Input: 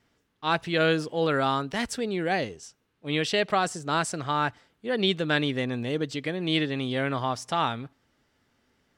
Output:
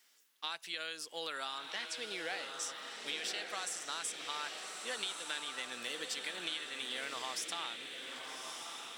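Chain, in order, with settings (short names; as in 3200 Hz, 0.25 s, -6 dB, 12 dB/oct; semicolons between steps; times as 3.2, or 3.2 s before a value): HPF 200 Hz 12 dB/oct; differentiator; 1.58–2.54 LPF 3800 Hz 12 dB/oct; compressor 10:1, threshold -48 dBFS, peak gain reduction 19 dB; diffused feedback echo 1.179 s, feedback 52%, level -4.5 dB; gain +11 dB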